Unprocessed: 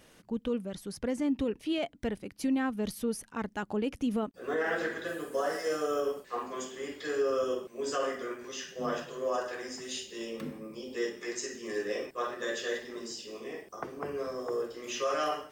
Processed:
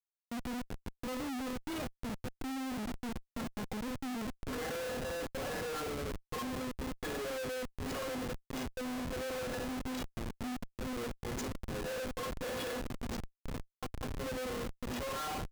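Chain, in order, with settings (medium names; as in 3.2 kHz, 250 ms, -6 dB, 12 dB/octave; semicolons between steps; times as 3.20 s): resampled via 16 kHz; inharmonic resonator 250 Hz, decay 0.23 s, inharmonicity 0.008; on a send at -16 dB: reverberation RT60 0.40 s, pre-delay 35 ms; on the sum: Schmitt trigger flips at -49 dBFS; trim +7.5 dB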